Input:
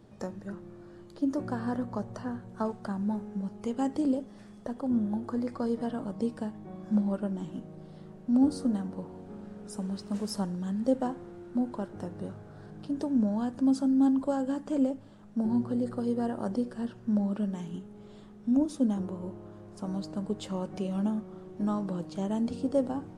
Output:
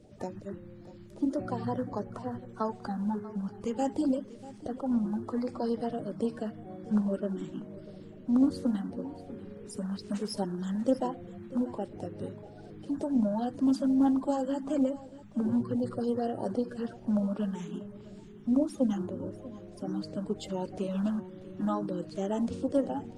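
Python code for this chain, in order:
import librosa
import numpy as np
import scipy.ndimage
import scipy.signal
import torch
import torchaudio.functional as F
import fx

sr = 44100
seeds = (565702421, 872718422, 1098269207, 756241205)

y = fx.spec_quant(x, sr, step_db=30)
y = y + 10.0 ** (-17.5 / 20.0) * np.pad(y, (int(641 * sr / 1000.0), 0))[:len(y)]
y = fx.doppler_dist(y, sr, depth_ms=0.11)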